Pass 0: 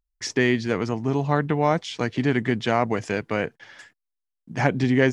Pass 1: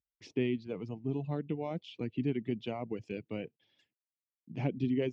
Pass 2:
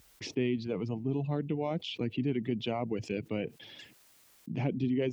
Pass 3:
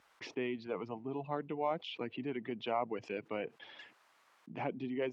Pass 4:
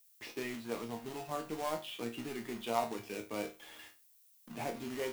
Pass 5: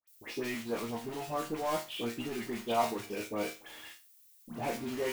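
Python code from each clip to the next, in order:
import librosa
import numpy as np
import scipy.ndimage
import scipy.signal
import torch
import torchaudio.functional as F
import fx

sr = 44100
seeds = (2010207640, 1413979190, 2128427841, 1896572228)

y1 = scipy.signal.sosfilt(scipy.signal.butter(2, 85.0, 'highpass', fs=sr, output='sos'), x)
y1 = fx.dereverb_blind(y1, sr, rt60_s=1.6)
y1 = fx.curve_eq(y1, sr, hz=(340.0, 1700.0, 2600.0, 8700.0), db=(0, -21, -2, -27))
y1 = F.gain(torch.from_numpy(y1), -8.0).numpy()
y2 = fx.env_flatten(y1, sr, amount_pct=50)
y3 = fx.bandpass_q(y2, sr, hz=1100.0, q=1.4)
y3 = F.gain(torch.from_numpy(y3), 6.0).numpy()
y4 = fx.quant_companded(y3, sr, bits=4)
y4 = fx.resonator_bank(y4, sr, root=39, chord='sus4', decay_s=0.28)
y4 = fx.dmg_noise_colour(y4, sr, seeds[0], colour='violet', level_db=-75.0)
y4 = F.gain(torch.from_numpy(y4), 10.0).numpy()
y5 = fx.dispersion(y4, sr, late='highs', ms=76.0, hz=1600.0)
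y5 = F.gain(torch.from_numpy(y5), 4.0).numpy()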